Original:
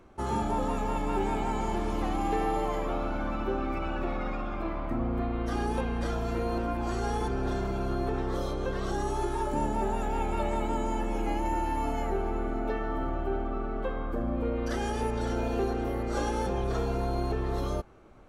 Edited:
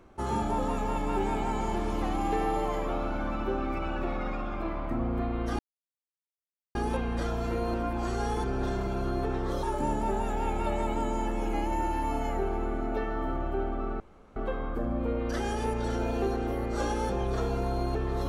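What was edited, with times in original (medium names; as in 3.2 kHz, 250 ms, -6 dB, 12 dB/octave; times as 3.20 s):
5.59 s: insert silence 1.16 s
8.47–9.36 s: delete
13.73 s: insert room tone 0.36 s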